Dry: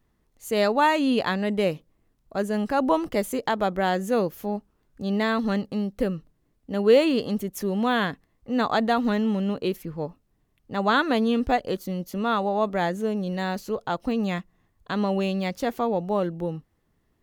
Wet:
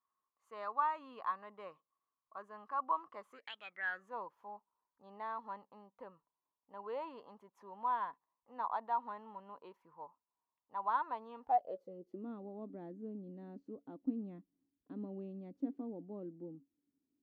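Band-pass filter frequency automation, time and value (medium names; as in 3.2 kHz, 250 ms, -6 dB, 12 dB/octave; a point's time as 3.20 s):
band-pass filter, Q 13
3.31 s 1.1 kHz
3.54 s 3.2 kHz
4.14 s 970 Hz
11.40 s 970 Hz
12.28 s 280 Hz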